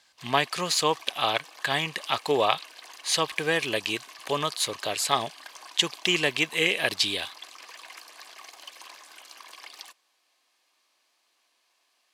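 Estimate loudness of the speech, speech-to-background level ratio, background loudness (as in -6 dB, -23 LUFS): -26.0 LUFS, 18.5 dB, -44.5 LUFS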